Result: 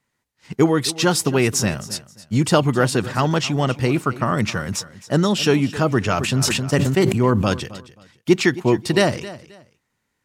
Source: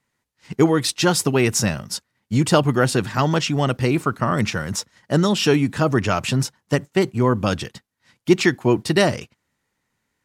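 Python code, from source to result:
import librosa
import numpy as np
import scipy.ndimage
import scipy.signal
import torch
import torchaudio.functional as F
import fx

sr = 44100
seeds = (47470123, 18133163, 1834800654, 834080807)

y = fx.echo_feedback(x, sr, ms=266, feedback_pct=25, wet_db=-17.0)
y = fx.sustainer(y, sr, db_per_s=29.0, at=(6.15, 7.53))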